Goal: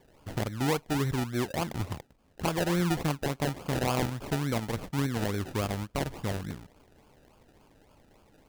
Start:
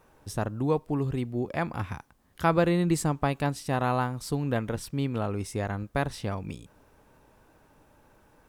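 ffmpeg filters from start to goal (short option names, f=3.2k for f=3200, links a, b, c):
-af "alimiter=limit=-17.5dB:level=0:latency=1:release=300,acrusher=samples=32:mix=1:aa=0.000001:lfo=1:lforange=19.2:lforate=3.5"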